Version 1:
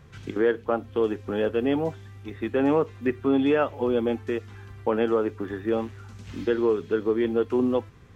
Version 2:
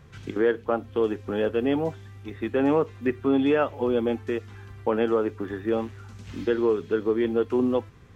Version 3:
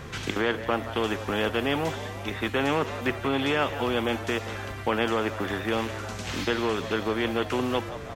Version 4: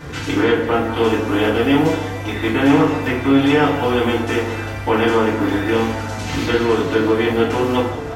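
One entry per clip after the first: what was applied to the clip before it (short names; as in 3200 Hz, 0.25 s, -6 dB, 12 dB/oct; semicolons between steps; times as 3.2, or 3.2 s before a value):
nothing audible
frequency-shifting echo 0.175 s, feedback 51%, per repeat +97 Hz, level -22.5 dB; spectral compressor 2:1
FDN reverb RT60 0.6 s, low-frequency decay 1.45×, high-frequency decay 0.6×, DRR -9 dB; gain -1.5 dB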